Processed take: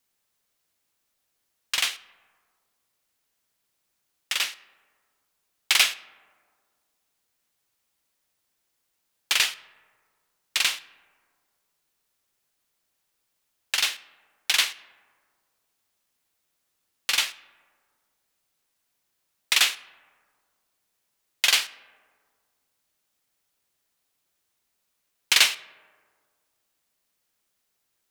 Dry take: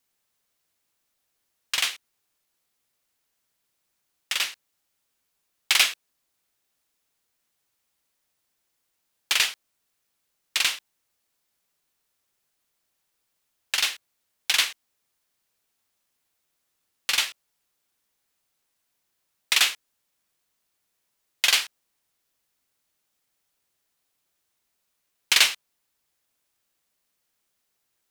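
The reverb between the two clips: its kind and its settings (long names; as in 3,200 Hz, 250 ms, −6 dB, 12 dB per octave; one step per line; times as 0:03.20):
comb and all-pass reverb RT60 1.9 s, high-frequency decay 0.35×, pre-delay 15 ms, DRR 18.5 dB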